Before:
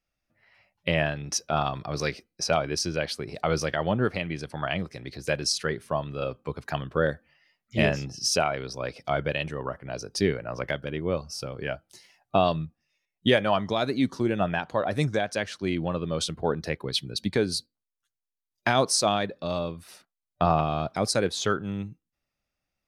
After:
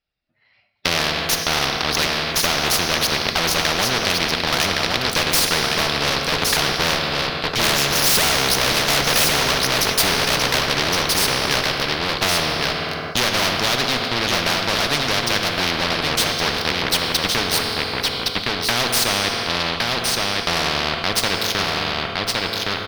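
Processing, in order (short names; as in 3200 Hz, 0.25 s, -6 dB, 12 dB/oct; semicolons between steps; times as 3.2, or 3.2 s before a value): bin magnitudes rounded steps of 15 dB; Doppler pass-by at 8.69, 8 m/s, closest 5.6 m; dynamic EQ 760 Hz, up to +4 dB, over -48 dBFS, Q 0.86; in parallel at +3 dB: compressor, threshold -42 dBFS, peak gain reduction 21.5 dB; on the sum: sample leveller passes 5; one-sided clip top -21.5 dBFS; resonant high shelf 5600 Hz -10 dB, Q 3; echo 1.115 s -7 dB; on a send at -7.5 dB: reverb RT60 1.8 s, pre-delay 3 ms; on the sum: spectral compressor 4:1; gain +2.5 dB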